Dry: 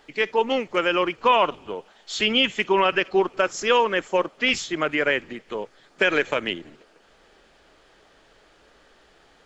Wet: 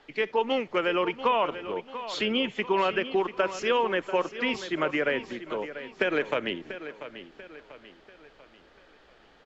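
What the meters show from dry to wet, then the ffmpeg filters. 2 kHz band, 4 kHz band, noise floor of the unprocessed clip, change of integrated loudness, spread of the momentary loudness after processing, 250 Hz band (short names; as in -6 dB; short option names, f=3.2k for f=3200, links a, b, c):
-6.5 dB, -8.0 dB, -57 dBFS, -6.0 dB, 14 LU, -3.0 dB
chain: -filter_complex "[0:a]acrossover=split=99|930[a][b][c];[a]acompressor=threshold=-58dB:ratio=4[d];[b]acompressor=threshold=-21dB:ratio=4[e];[c]acompressor=threshold=-26dB:ratio=4[f];[d][e][f]amix=inputs=3:normalize=0,lowpass=4.6k,aecho=1:1:690|1380|2070|2760:0.237|0.0996|0.0418|0.0176,volume=-2dB"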